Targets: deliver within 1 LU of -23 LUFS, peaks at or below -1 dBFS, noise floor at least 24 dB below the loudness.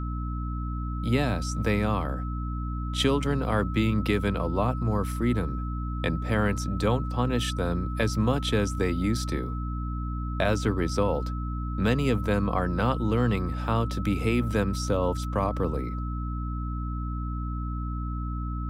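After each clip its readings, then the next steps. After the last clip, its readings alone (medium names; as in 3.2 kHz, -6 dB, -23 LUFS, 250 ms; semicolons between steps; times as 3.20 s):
hum 60 Hz; highest harmonic 300 Hz; hum level -28 dBFS; steady tone 1.3 kHz; tone level -39 dBFS; loudness -28.0 LUFS; peak level -11.0 dBFS; loudness target -23.0 LUFS
-> hum notches 60/120/180/240/300 Hz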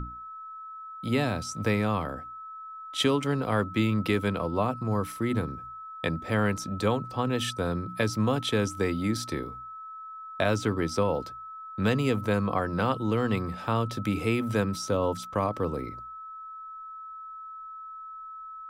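hum not found; steady tone 1.3 kHz; tone level -39 dBFS
-> band-stop 1.3 kHz, Q 30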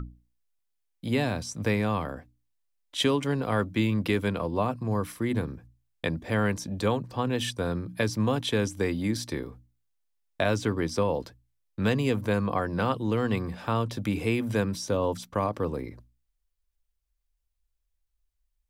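steady tone not found; loudness -28.5 LUFS; peak level -12.5 dBFS; loudness target -23.0 LUFS
-> trim +5.5 dB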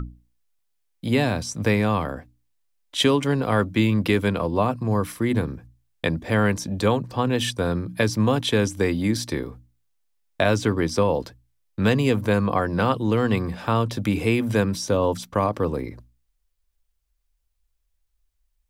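loudness -23.0 LUFS; peak level -7.0 dBFS; noise floor -72 dBFS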